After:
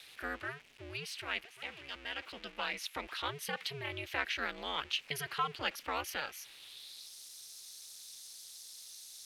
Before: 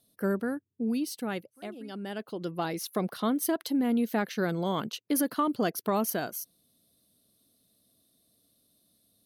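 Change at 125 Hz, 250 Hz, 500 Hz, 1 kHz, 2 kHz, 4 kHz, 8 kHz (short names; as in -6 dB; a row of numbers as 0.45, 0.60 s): -12.0, -22.5, -13.0, -5.5, +2.0, +3.5, -7.0 dB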